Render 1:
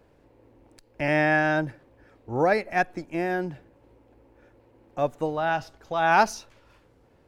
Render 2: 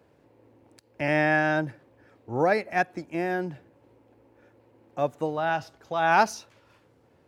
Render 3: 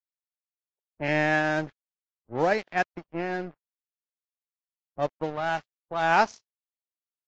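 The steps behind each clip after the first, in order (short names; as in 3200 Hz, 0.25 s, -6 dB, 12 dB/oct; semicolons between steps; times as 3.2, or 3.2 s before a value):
HPF 79 Hz 24 dB/oct; gain -1 dB
crossover distortion -36.5 dBFS; low-pass opened by the level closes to 470 Hz, open at -22.5 dBFS; Vorbis 48 kbps 16000 Hz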